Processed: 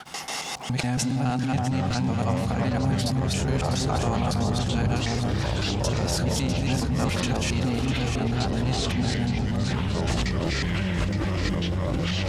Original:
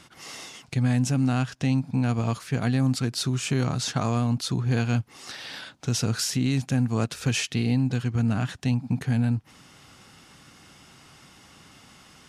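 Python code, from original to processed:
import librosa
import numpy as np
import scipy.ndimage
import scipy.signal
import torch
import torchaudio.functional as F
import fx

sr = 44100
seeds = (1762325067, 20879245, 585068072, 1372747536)

p1 = fx.local_reverse(x, sr, ms=139.0)
p2 = fx.graphic_eq_31(p1, sr, hz=(100, 315, 800), db=(-11, -6, 10))
p3 = fx.echo_alternate(p2, sr, ms=325, hz=1100.0, feedback_pct=56, wet_db=-2.5)
p4 = fx.dmg_crackle(p3, sr, seeds[0], per_s=59.0, level_db=-46.0)
p5 = fx.echo_pitch(p4, sr, ms=607, semitones=-5, count=3, db_per_echo=-3.0)
p6 = fx.over_compress(p5, sr, threshold_db=-31.0, ratio=-0.5)
p7 = p5 + (p6 * librosa.db_to_amplitude(0.0))
y = p7 * librosa.db_to_amplitude(-3.5)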